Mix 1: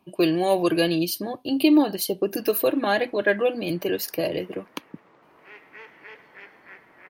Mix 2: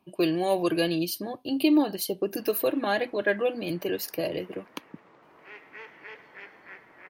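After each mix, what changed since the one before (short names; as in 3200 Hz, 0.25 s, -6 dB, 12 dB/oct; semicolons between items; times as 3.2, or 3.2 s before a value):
speech -4.0 dB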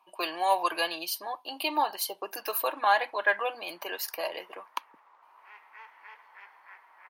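background -8.5 dB; master: add resonant high-pass 940 Hz, resonance Q 3.9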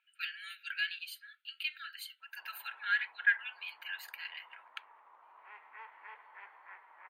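speech: add brick-wall FIR high-pass 1300 Hz; master: add running mean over 8 samples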